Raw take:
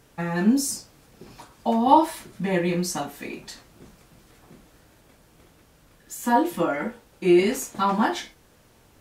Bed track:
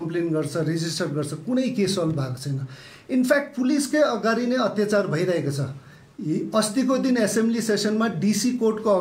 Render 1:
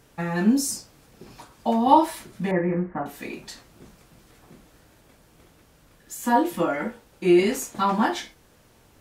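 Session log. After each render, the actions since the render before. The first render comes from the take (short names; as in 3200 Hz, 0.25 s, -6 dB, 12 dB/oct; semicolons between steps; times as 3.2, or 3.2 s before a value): 2.51–3.06 steep low-pass 2000 Hz 48 dB/oct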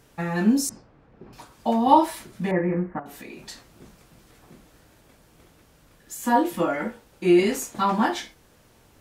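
0.69–1.33 LPF 1600 Hz; 2.99–3.46 compressor, threshold -36 dBFS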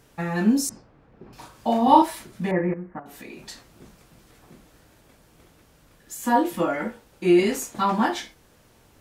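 1.35–2.02 doubler 38 ms -2.5 dB; 2.74–3.25 fade in, from -12.5 dB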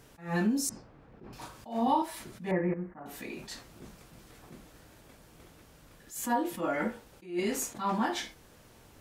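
compressor 4:1, threshold -26 dBFS, peak gain reduction 14 dB; attack slew limiter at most 160 dB/s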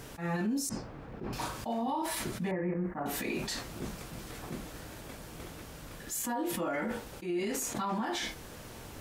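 in parallel at 0 dB: negative-ratio compressor -41 dBFS, ratio -1; on the sum: limiter -25.5 dBFS, peak gain reduction 9 dB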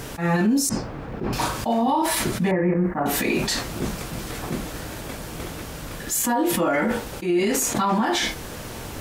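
gain +12 dB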